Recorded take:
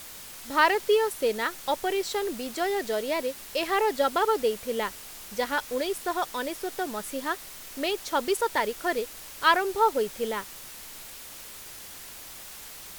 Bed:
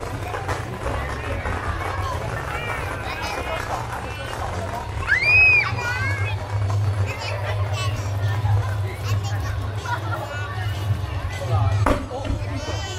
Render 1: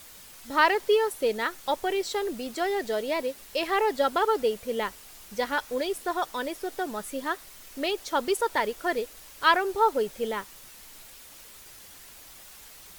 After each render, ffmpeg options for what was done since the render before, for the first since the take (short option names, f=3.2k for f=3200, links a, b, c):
-af "afftdn=nr=6:nf=-44"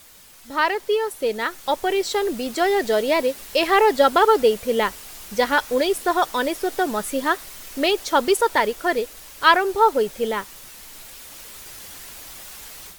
-af "dynaudnorm=f=990:g=3:m=9.5dB"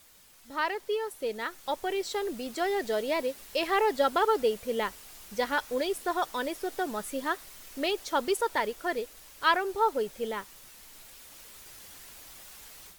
-af "volume=-9.5dB"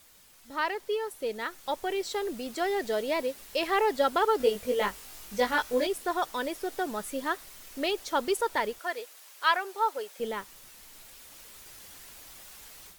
-filter_complex "[0:a]asettb=1/sr,asplit=3[a][b][c];[a]atrim=end=4.384[d];[b]atrim=start=4.38:end=5.87,asetpts=PTS-STARTPTS,afade=t=in:d=0.004:c=qsin,afade=t=out:st=1.486:d=0.004:c=qsin,asplit=2[e][f];[f]adelay=20,volume=-2dB[g];[e][g]amix=inputs=2:normalize=0,atrim=end_sample=65709[h];[c]atrim=start=5.866[i];[d][h]acrossfade=d=0.004:c1=hsin:c2=qsin[j];[j][i]acrossfade=d=0.004:c1=qsin:c2=hsin,asettb=1/sr,asplit=3[k][l][m];[k]atrim=end=8.784[n];[l]atrim=start=8.78:end=10.2,asetpts=PTS-STARTPTS,afade=t=in:d=0.004:c=qsin,afade=t=out:st=1.416:d=0.004:c=qsin,highpass=610[o];[m]atrim=start=10.196[p];[n][o]acrossfade=d=0.004:c1=hsin:c2=qsin[q];[q][p]acrossfade=d=0.004:c1=qsin:c2=hsin"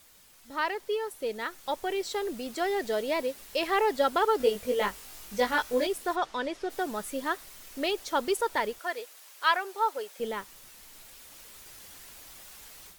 -filter_complex "[0:a]asplit=3[a][b][c];[a]afade=t=out:st=6.15:d=0.02[d];[b]lowpass=5.3k,afade=t=in:st=6.15:d=0.02,afade=t=out:st=6.69:d=0.02[e];[c]afade=t=in:st=6.69:d=0.02[f];[d][e][f]amix=inputs=3:normalize=0"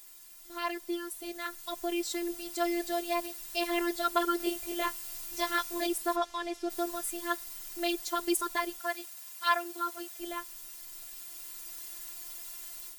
-af "crystalizer=i=1.5:c=0,afftfilt=real='hypot(re,im)*cos(PI*b)':imag='0':win_size=512:overlap=0.75"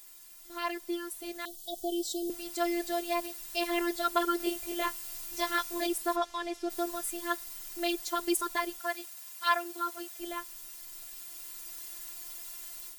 -filter_complex "[0:a]asettb=1/sr,asplit=3[a][b][c];[a]atrim=end=1.454[d];[b]atrim=start=1.45:end=2.3,asetpts=PTS-STARTPTS,afade=t=in:d=0.004:c=qsin,afade=t=out:st=0.846:d=0.004:c=qsin,asuperstop=centerf=1600:order=20:qfactor=0.74[e];[c]atrim=start=2.296[f];[d][e]acrossfade=d=0.004:c1=hsin:c2=qsin[g];[g][f]acrossfade=d=0.004:c1=qsin:c2=hsin"